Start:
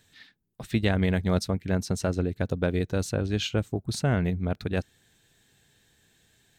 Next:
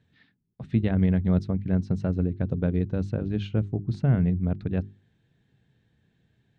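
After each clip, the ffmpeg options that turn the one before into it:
ffmpeg -i in.wav -af "lowpass=3000,equalizer=frequency=140:width_type=o:width=2.8:gain=14.5,bandreject=frequency=50:width_type=h:width=6,bandreject=frequency=100:width_type=h:width=6,bandreject=frequency=150:width_type=h:width=6,bandreject=frequency=200:width_type=h:width=6,bandreject=frequency=250:width_type=h:width=6,bandreject=frequency=300:width_type=h:width=6,bandreject=frequency=350:width_type=h:width=6,bandreject=frequency=400:width_type=h:width=6,volume=-9dB" out.wav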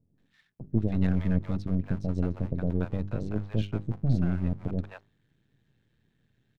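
ffmpeg -i in.wav -filter_complex "[0:a]aeval=exprs='if(lt(val(0),0),0.251*val(0),val(0))':channel_layout=same,acrossover=split=680[link_01][link_02];[link_02]adelay=180[link_03];[link_01][link_03]amix=inputs=2:normalize=0" out.wav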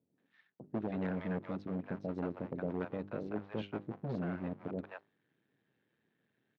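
ffmpeg -i in.wav -af "volume=19dB,asoftclip=hard,volume=-19dB,highpass=290,lowpass=2500,volume=-1dB" -ar 44100 -c:a aac -b:a 64k out.aac

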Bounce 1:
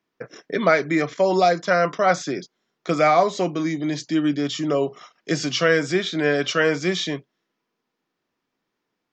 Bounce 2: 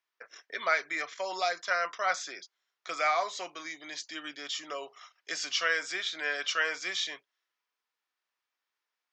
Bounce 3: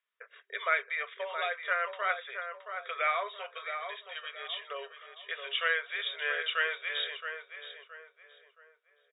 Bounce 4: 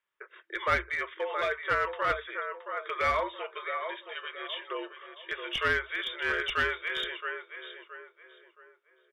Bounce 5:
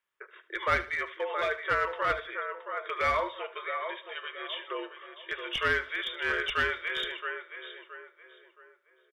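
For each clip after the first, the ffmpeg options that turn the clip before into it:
ffmpeg -i in.wav -af "highpass=1100,volume=-5dB" out.wav
ffmpeg -i in.wav -filter_complex "[0:a]afftfilt=real='re*between(b*sr/4096,390,3800)':imag='im*between(b*sr/4096,390,3800)':win_size=4096:overlap=0.75,equalizer=frequency=800:width_type=o:width=0.4:gain=-11.5,asplit=2[link_01][link_02];[link_02]adelay=671,lowpass=frequency=1800:poles=1,volume=-6.5dB,asplit=2[link_03][link_04];[link_04]adelay=671,lowpass=frequency=1800:poles=1,volume=0.39,asplit=2[link_05][link_06];[link_06]adelay=671,lowpass=frequency=1800:poles=1,volume=0.39,asplit=2[link_07][link_08];[link_08]adelay=671,lowpass=frequency=1800:poles=1,volume=0.39,asplit=2[link_09][link_10];[link_10]adelay=671,lowpass=frequency=1800:poles=1,volume=0.39[link_11];[link_03][link_05][link_07][link_09][link_11]amix=inputs=5:normalize=0[link_12];[link_01][link_12]amix=inputs=2:normalize=0" out.wav
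ffmpeg -i in.wav -af "aeval=exprs='clip(val(0),-1,0.0422)':channel_layout=same,highshelf=frequency=3000:gain=-9,afreqshift=-62,volume=5dB" out.wav
ffmpeg -i in.wav -af "aecho=1:1:75|150|225:0.168|0.0537|0.0172" out.wav

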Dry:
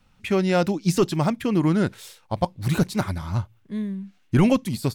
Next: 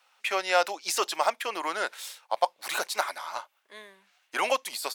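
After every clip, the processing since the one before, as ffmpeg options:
ffmpeg -i in.wav -af "highpass=frequency=630:width=0.5412,highpass=frequency=630:width=1.3066,volume=3dB" out.wav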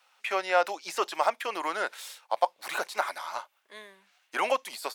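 ffmpeg -i in.wav -filter_complex "[0:a]acrossover=split=2500[link_01][link_02];[link_02]acompressor=threshold=-38dB:ratio=4:attack=1:release=60[link_03];[link_01][link_03]amix=inputs=2:normalize=0" out.wav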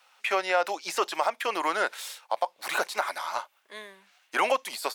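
ffmpeg -i in.wav -af "alimiter=limit=-17.5dB:level=0:latency=1:release=152,volume=4dB" out.wav

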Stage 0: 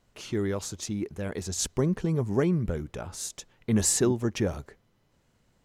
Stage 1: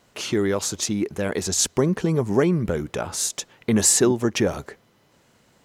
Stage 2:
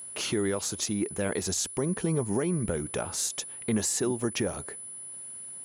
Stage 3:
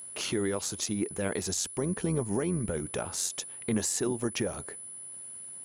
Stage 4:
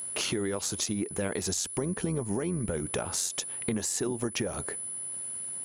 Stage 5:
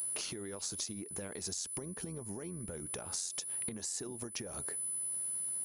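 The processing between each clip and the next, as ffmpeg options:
ffmpeg -i in.wav -filter_complex "[0:a]highpass=frequency=240:poles=1,asplit=2[link_01][link_02];[link_02]acompressor=threshold=-34dB:ratio=6,volume=2dB[link_03];[link_01][link_03]amix=inputs=2:normalize=0,volume=5dB" out.wav
ffmpeg -i in.wav -af "alimiter=limit=-16.5dB:level=0:latency=1:release=464,aeval=exprs='val(0)+0.0141*sin(2*PI*10000*n/s)':channel_layout=same,volume=-2dB" out.wav
ffmpeg -i in.wav -af "tremolo=f=90:d=0.4" out.wav
ffmpeg -i in.wav -af "acompressor=threshold=-34dB:ratio=6,volume=6.5dB" out.wav
ffmpeg -i in.wav -af "acompressor=threshold=-34dB:ratio=6,aresample=22050,aresample=44100,aexciter=amount=2.7:drive=1.5:freq=4300,volume=-6dB" out.wav

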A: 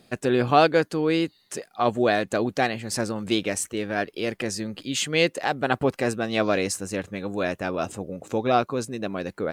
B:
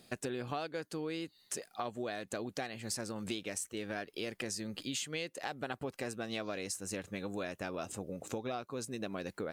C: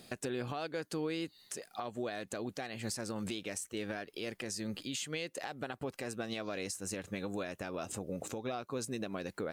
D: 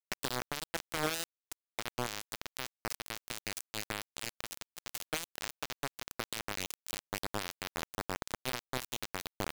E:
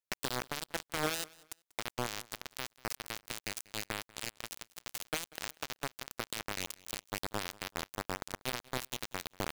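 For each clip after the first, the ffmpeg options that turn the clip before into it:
ffmpeg -i in.wav -af "highshelf=frequency=3600:gain=7.5,acompressor=threshold=-29dB:ratio=12,volume=-6dB" out.wav
ffmpeg -i in.wav -af "alimiter=level_in=8.5dB:limit=-24dB:level=0:latency=1:release=259,volume=-8.5dB,volume=5dB" out.wav
ffmpeg -i in.wav -af "acrusher=bits=4:mix=0:aa=0.000001,volume=2.5dB" out.wav
ffmpeg -i in.wav -af "aecho=1:1:190|380:0.075|0.0195" out.wav

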